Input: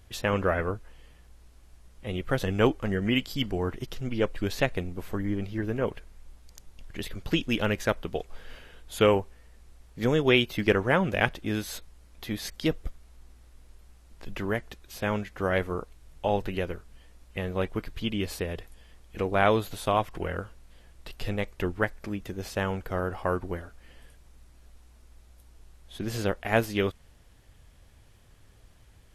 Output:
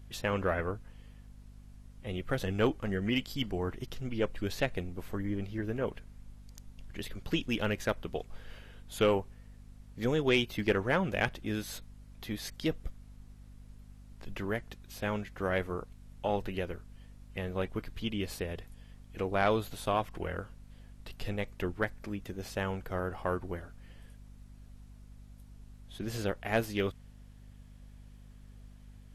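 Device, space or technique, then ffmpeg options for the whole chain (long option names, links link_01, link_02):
valve amplifier with mains hum: -af "aeval=exprs='(tanh(3.55*val(0)+0.25)-tanh(0.25))/3.55':channel_layout=same,aeval=exprs='val(0)+0.00447*(sin(2*PI*50*n/s)+sin(2*PI*2*50*n/s)/2+sin(2*PI*3*50*n/s)/3+sin(2*PI*4*50*n/s)/4+sin(2*PI*5*50*n/s)/5)':channel_layout=same,volume=-4dB"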